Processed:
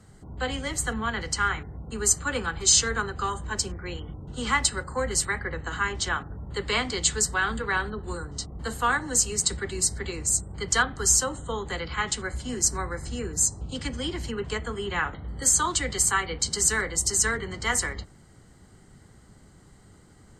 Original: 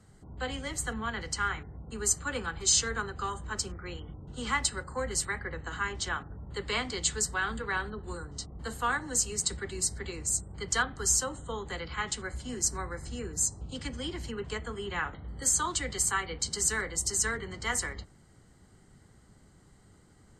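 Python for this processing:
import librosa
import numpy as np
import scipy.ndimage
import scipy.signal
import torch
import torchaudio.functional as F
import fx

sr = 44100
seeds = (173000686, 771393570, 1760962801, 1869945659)

y = fx.notch(x, sr, hz=1300.0, q=6.1, at=(3.47, 3.96))
y = y * librosa.db_to_amplitude(5.5)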